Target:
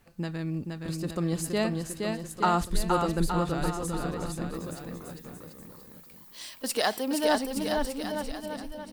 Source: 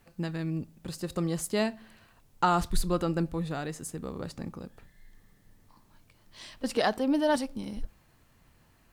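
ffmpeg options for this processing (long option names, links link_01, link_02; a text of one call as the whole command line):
ffmpeg -i in.wav -filter_complex "[0:a]asettb=1/sr,asplit=3[link_01][link_02][link_03];[link_01]atrim=end=4.544[link_04];[link_02]atrim=start=4.54:end=7.25,asetpts=PTS-STARTPTS,afade=type=in:duration=0.004:curve=qsin,afade=type=out:start_time=2.706:duration=0.004:curve=qsin,aemphasis=mode=production:type=bsi[link_05];[link_03]atrim=start=7.246[link_06];[link_04][link_05]acrossfade=duration=0.004:curve1=hsin:curve2=qsin[link_07];[link_07][link_06]acrossfade=duration=0.004:curve1=qsin:curve2=hsin,aecho=1:1:470|869.5|1209|1498|1743:0.631|0.398|0.251|0.158|0.1" out.wav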